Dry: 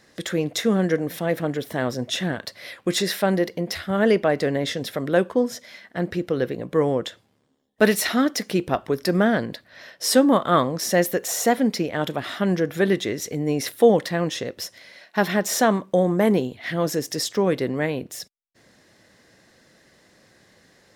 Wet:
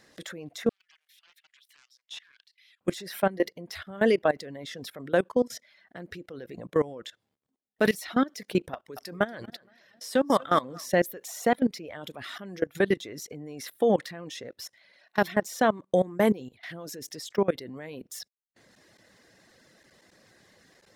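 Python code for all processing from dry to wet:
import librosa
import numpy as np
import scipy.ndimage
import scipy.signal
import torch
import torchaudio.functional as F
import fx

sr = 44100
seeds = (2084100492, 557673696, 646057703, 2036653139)

y = fx.chain(x, sr, fx.ladder_highpass(hz=2300.0, resonance_pct=30),
    fx.high_shelf(hz=5500.0, db=-9.0),
    fx.doppler_dist(depth_ms=0.35), at=(0.69, 2.81))
y = fx.chain(y, sr, fx.low_shelf(hz=370.0, db=-4.5),
    fx.echo_feedback(ms=234, feedback_pct=35, wet_db=-16), at=(8.73, 10.9))
y = fx.dereverb_blind(y, sr, rt60_s=0.63)
y = fx.low_shelf(y, sr, hz=210.0, db=-2.5)
y = fx.level_steps(y, sr, step_db=20)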